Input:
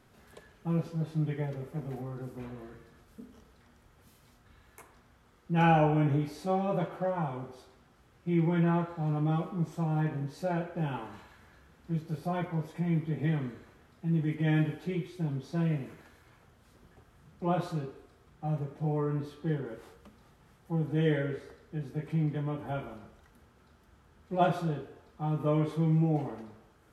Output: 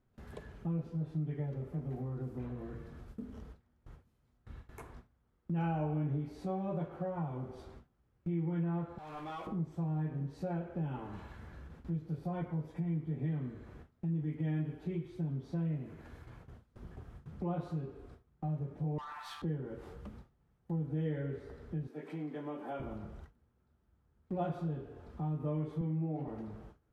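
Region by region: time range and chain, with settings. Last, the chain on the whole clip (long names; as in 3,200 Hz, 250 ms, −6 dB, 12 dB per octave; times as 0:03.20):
0:08.98–0:09.47: Bessel high-pass filter 1,500 Hz + power curve on the samples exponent 0.7
0:18.98–0:19.42: Butterworth high-pass 760 Hz 72 dB per octave + leveller curve on the samples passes 3
0:21.87–0:22.80: high-pass filter 230 Hz 24 dB per octave + low-shelf EQ 410 Hz −7.5 dB
0:25.81–0:26.28: band-pass filter 160–4,300 Hz + mains-hum notches 50/100/150/200/250/300/350/400/450 Hz
whole clip: noise gate with hold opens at −49 dBFS; spectral tilt −2.5 dB per octave; downward compressor 2.5 to 1, threshold −43 dBFS; level +2.5 dB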